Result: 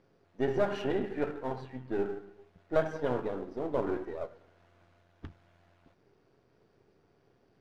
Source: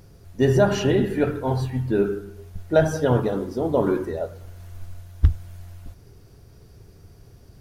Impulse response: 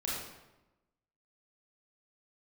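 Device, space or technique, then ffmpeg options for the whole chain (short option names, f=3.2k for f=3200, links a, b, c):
crystal radio: -af "highpass=260,lowpass=2.8k,aeval=exprs='if(lt(val(0),0),0.447*val(0),val(0))':c=same,volume=-7dB"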